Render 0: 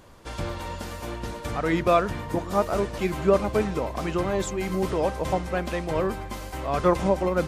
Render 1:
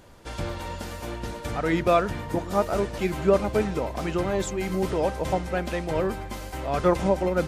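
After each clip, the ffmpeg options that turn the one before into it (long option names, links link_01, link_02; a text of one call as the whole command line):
ffmpeg -i in.wav -af "bandreject=frequency=1100:width=9.1" out.wav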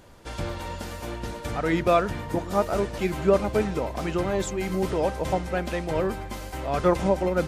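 ffmpeg -i in.wav -af anull out.wav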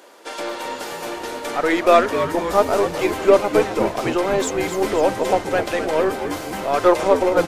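ffmpeg -i in.wav -filter_complex "[0:a]highpass=frequency=330:width=0.5412,highpass=frequency=330:width=1.3066,aeval=exprs='0.335*(cos(1*acos(clip(val(0)/0.335,-1,1)))-cos(1*PI/2))+0.0106*(cos(8*acos(clip(val(0)/0.335,-1,1)))-cos(8*PI/2))':channel_layout=same,asplit=2[link_01][link_02];[link_02]asplit=7[link_03][link_04][link_05][link_06][link_07][link_08][link_09];[link_03]adelay=257,afreqshift=-90,volume=-9dB[link_10];[link_04]adelay=514,afreqshift=-180,volume=-14dB[link_11];[link_05]adelay=771,afreqshift=-270,volume=-19.1dB[link_12];[link_06]adelay=1028,afreqshift=-360,volume=-24.1dB[link_13];[link_07]adelay=1285,afreqshift=-450,volume=-29.1dB[link_14];[link_08]adelay=1542,afreqshift=-540,volume=-34.2dB[link_15];[link_09]adelay=1799,afreqshift=-630,volume=-39.2dB[link_16];[link_10][link_11][link_12][link_13][link_14][link_15][link_16]amix=inputs=7:normalize=0[link_17];[link_01][link_17]amix=inputs=2:normalize=0,volume=7.5dB" out.wav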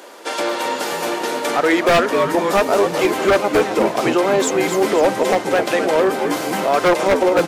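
ffmpeg -i in.wav -filter_complex "[0:a]highpass=frequency=140:width=0.5412,highpass=frequency=140:width=1.3066,asplit=2[link_01][link_02];[link_02]acompressor=threshold=-24dB:ratio=6,volume=2.5dB[link_03];[link_01][link_03]amix=inputs=2:normalize=0,aeval=exprs='0.422*(abs(mod(val(0)/0.422+3,4)-2)-1)':channel_layout=same" out.wav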